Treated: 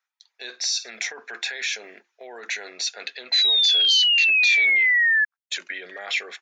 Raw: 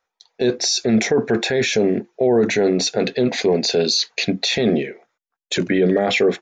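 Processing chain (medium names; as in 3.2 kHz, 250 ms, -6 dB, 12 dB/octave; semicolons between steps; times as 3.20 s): 3.32–5.25 s: painted sound fall 1.7–4.1 kHz -14 dBFS; Chebyshev high-pass 1.6 kHz, order 2; 0.45–0.90 s: flutter echo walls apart 8.8 m, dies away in 0.24 s; trim -4 dB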